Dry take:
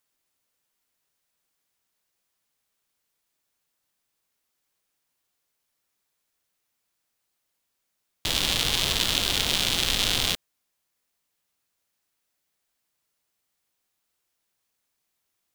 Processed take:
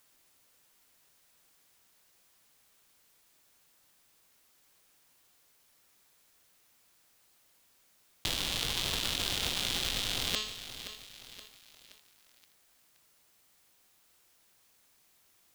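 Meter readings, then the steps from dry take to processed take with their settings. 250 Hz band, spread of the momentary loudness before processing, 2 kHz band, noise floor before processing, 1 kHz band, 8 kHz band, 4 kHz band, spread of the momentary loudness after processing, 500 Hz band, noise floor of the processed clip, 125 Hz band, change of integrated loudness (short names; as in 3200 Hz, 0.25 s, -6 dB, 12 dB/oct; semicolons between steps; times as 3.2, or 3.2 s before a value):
-8.0 dB, 5 LU, -8.0 dB, -79 dBFS, -7.5 dB, -8.0 dB, -8.0 dB, 17 LU, -7.5 dB, -67 dBFS, -8.0 dB, -9.5 dB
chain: de-hum 214.2 Hz, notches 37; negative-ratio compressor -35 dBFS, ratio -1; lo-fi delay 0.523 s, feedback 55%, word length 8-bit, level -11 dB; gain +1.5 dB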